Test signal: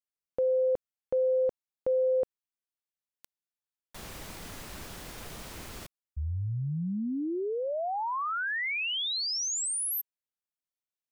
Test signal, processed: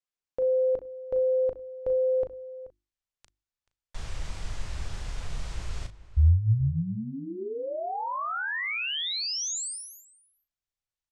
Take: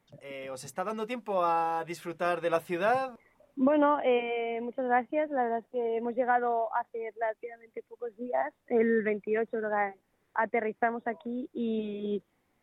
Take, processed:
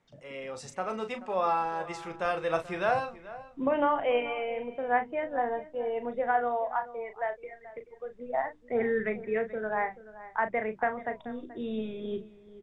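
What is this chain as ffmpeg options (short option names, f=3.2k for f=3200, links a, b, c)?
-filter_complex "[0:a]lowpass=f=8.1k:w=0.5412,lowpass=f=8.1k:w=1.3066,bandreject=f=50:t=h:w=6,bandreject=f=100:t=h:w=6,bandreject=f=150:t=h:w=6,bandreject=f=200:t=h:w=6,bandreject=f=250:t=h:w=6,bandreject=f=300:t=h:w=6,bandreject=f=350:t=h:w=6,asubboost=boost=9.5:cutoff=84,asplit=2[a][b];[b]adelay=37,volume=-9dB[c];[a][c]amix=inputs=2:normalize=0,asplit=2[d][e];[e]adelay=431.5,volume=-16dB,highshelf=f=4k:g=-9.71[f];[d][f]amix=inputs=2:normalize=0"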